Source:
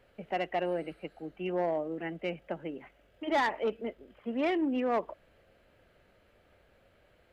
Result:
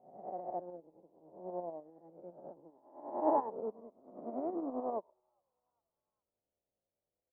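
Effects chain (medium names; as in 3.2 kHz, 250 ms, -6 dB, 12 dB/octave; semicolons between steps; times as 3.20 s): reverse spectral sustain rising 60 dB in 1.85 s; steep low-pass 980 Hz 36 dB/octave; frequency-shifting echo 410 ms, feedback 45%, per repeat +120 Hz, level -23 dB; tremolo saw up 10 Hz, depth 35%; bass shelf 70 Hz -11.5 dB; upward expansion 2.5:1, over -42 dBFS; trim -1.5 dB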